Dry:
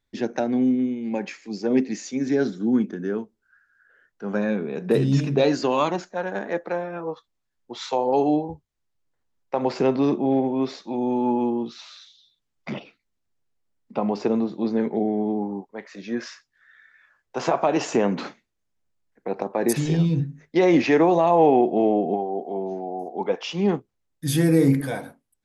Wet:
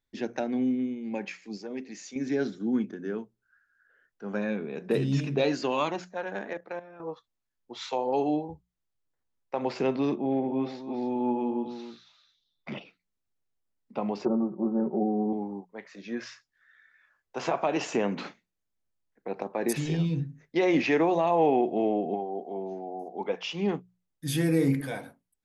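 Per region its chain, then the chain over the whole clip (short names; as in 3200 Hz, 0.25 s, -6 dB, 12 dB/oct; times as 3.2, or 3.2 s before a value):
1.57–2.16 low shelf 330 Hz -7.5 dB + compressor 1.5:1, threshold -36 dBFS
6.53–7 low shelf 240 Hz -4 dB + level quantiser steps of 14 dB
10.15–12.72 LPF 2600 Hz 6 dB/oct + echo 0.275 s -9.5 dB
14.25–15.33 elliptic low-pass 1300 Hz, stop band 50 dB + comb 5.4 ms, depth 98%
whole clip: notches 60/120/180 Hz; dynamic EQ 2600 Hz, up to +5 dB, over -46 dBFS, Q 1.4; gain -6.5 dB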